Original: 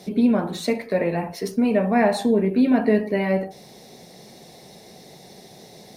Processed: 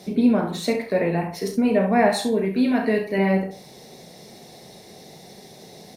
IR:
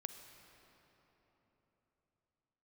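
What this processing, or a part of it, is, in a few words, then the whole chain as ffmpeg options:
slapback doubling: -filter_complex "[0:a]asplit=3[a][b][c];[b]adelay=36,volume=-8dB[d];[c]adelay=67,volume=-9.5dB[e];[a][d][e]amix=inputs=3:normalize=0,asettb=1/sr,asplit=3[f][g][h];[f]atrim=end=2.104[i];[g]atrim=start=2.1:end=3.18,asetpts=PTS-STARTPTS,afade=t=in:d=0.004:c=qsin,afade=t=out:st=1.076:d=0.004:c=qsin,tiltshelf=f=1.3k:g=-4[j];[h]atrim=start=3.176[k];[i][j]acrossfade=d=0.004:c1=hsin:c2=qsin[l];[l][k]acrossfade=d=0.004:c1=qsin:c2=hsin"

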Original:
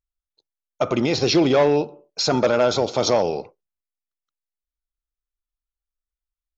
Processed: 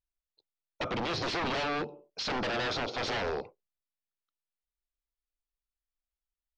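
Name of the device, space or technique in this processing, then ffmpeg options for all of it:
synthesiser wavefolder: -af "aeval=exprs='0.0841*(abs(mod(val(0)/0.0841+3,4)-2)-1)':c=same,lowpass=f=5k:w=0.5412,lowpass=f=5k:w=1.3066,volume=-5dB"

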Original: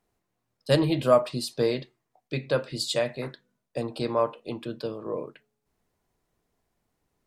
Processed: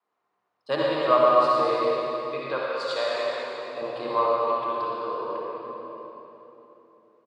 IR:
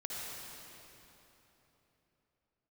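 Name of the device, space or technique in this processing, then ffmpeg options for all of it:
station announcement: -filter_complex "[0:a]highpass=320,lowpass=3.7k,equalizer=f=1.1k:t=o:w=0.59:g=12,aecho=1:1:113.7|207:0.282|0.316[a];[1:a]atrim=start_sample=2205[b];[a][b]afir=irnorm=-1:irlink=0,asettb=1/sr,asplit=3[c][d][e];[c]atrim=end=2.634[f];[d]atrim=start=2.63:end=3.82,asetpts=PTS-STARTPTS,afade=t=in:d=0.004:c=qsin,afade=t=out:st=1.186:d=0.004:c=qsin,highpass=f=340:p=1[g];[e]atrim=start=3.816[h];[f][g]acrossfade=d=0.004:c1=hsin:c2=qsin[i];[i][h]acrossfade=d=0.004:c1=qsin:c2=hsin,adynamicequalizer=threshold=0.0112:dfrequency=240:dqfactor=1.1:tfrequency=240:tqfactor=1.1:attack=5:release=100:ratio=0.375:range=2.5:mode=cutabove:tftype=bell"

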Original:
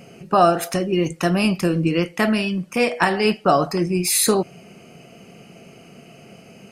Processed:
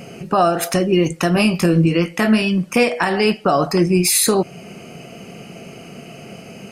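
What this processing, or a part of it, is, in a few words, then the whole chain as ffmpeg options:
stacked limiters: -filter_complex "[0:a]asettb=1/sr,asplit=3[a][b][c];[a]atrim=end=1.344[d];[b]atrim=start=1.34:end=2.42,asetpts=PTS-STARTPTS,afade=t=in:d=0.004:c=qsin,afade=t=out:st=1.076:d=0.004:c=qsin,asplit=2[e][f];[f]adelay=18,volume=-6dB[g];[e][g]amix=inputs=2:normalize=0,atrim=end_sample=47628[h];[c]atrim=start=2.416[i];[d][h]acrossfade=d=0.004:c1=hsin:c2=qsin[j];[j][i]acrossfade=d=0.004:c1=qsin:c2=hsin,alimiter=limit=-9dB:level=0:latency=1:release=151,alimiter=limit=-13.5dB:level=0:latency=1:release=384,volume=8dB"

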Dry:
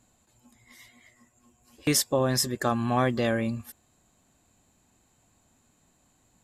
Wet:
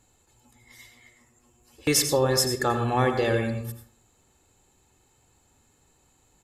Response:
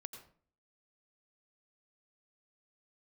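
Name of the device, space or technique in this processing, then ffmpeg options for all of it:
microphone above a desk: -filter_complex "[0:a]aecho=1:1:2.3:0.51[a];[1:a]atrim=start_sample=2205[b];[a][b]afir=irnorm=-1:irlink=0,volume=6dB"

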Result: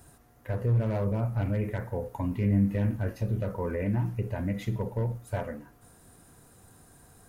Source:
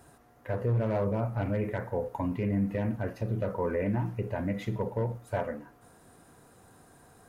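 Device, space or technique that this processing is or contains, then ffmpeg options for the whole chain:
smiley-face EQ: -filter_complex "[0:a]asettb=1/sr,asplit=3[a][b][c];[a]atrim=end=2.324[d];[b]atrim=start=2.32:end=3.39,asetpts=PTS-STARTPTS,afade=t=in:d=0.004:c=qsin,afade=t=out:st=1.066:d=0.004:c=qsin,asplit=2[e][f];[f]adelay=20,volume=-7dB[g];[e][g]amix=inputs=2:normalize=0,atrim=end_sample=47187[h];[c]atrim=start=3.386[i];[d][h]acrossfade=d=0.004:c1=hsin:c2=qsin[j];[j][i]acrossfade=d=0.004:c1=qsin:c2=hsin,lowshelf=f=100:g=8.5,equalizer=f=730:t=o:w=2.7:g=-3.5,highshelf=f=6.3k:g=7"

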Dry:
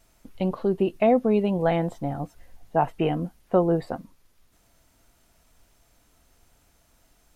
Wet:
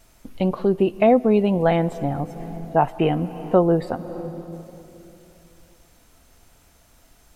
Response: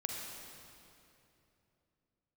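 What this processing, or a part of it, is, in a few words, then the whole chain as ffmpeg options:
ducked reverb: -filter_complex "[0:a]asplit=3[a][b][c];[1:a]atrim=start_sample=2205[d];[b][d]afir=irnorm=-1:irlink=0[e];[c]apad=whole_len=324374[f];[e][f]sidechaincompress=threshold=-32dB:ratio=8:attack=5.7:release=258,volume=-6.5dB[g];[a][g]amix=inputs=2:normalize=0,volume=3.5dB"

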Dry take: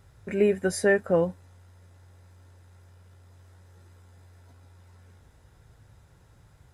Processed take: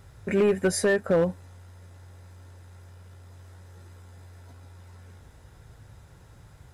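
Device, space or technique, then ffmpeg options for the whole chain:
limiter into clipper: -af "alimiter=limit=-17dB:level=0:latency=1:release=224,asoftclip=type=hard:threshold=-21.5dB,volume=5.5dB"

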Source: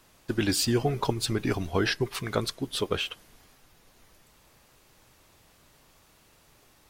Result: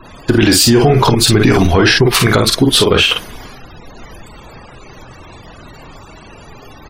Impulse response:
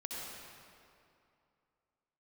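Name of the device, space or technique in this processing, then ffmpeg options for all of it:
mastering chain: -af "equalizer=f=560:t=o:w=0.23:g=-1.5,aecho=1:1:25|47:0.178|0.501,acompressor=threshold=-28dB:ratio=2.5,asoftclip=type=tanh:threshold=-19dB,alimiter=level_in=26.5dB:limit=-1dB:release=50:level=0:latency=1,afftfilt=real='re*gte(hypot(re,im),0.0282)':imag='im*gte(hypot(re,im),0.0282)':win_size=1024:overlap=0.75,volume=-1dB"

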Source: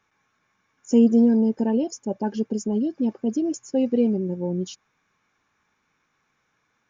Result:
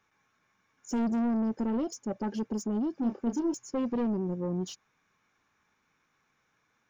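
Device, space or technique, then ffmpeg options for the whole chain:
saturation between pre-emphasis and de-emphasis: -filter_complex "[0:a]highshelf=f=2k:g=11,asoftclip=type=tanh:threshold=-23dB,highshelf=f=2k:g=-11,asettb=1/sr,asplit=3[a][b][c];[a]atrim=end=2.994[d];[b]atrim=start=2.99:end=3.54,asetpts=PTS-STARTPTS,afade=t=in:d=0.004:c=qsin,afade=t=out:st=0.546:d=0.004:c=qsin,asplit=2[e][f];[f]adelay=30,volume=-7dB[g];[e][g]amix=inputs=2:normalize=0,atrim=end_sample=24255[h];[c]atrim=start=3.536[i];[d][h]acrossfade=d=0.004:c1=hsin:c2=qsin[j];[j][i]acrossfade=d=0.004:c1=qsin:c2=hsin,volume=-2.5dB"

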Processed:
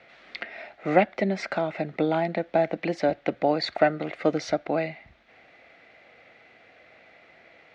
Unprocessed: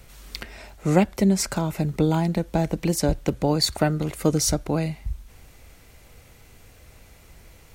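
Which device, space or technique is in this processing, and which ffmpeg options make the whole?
phone earpiece: -af "highpass=370,equalizer=f=420:t=q:w=4:g=-5,equalizer=f=680:t=q:w=4:g=6,equalizer=f=990:t=q:w=4:g=-9,equalizer=f=2k:t=q:w=4:g=5,equalizer=f=3k:t=q:w=4:g=-4,lowpass=f=3.4k:w=0.5412,lowpass=f=3.4k:w=1.3066,volume=2.5dB"

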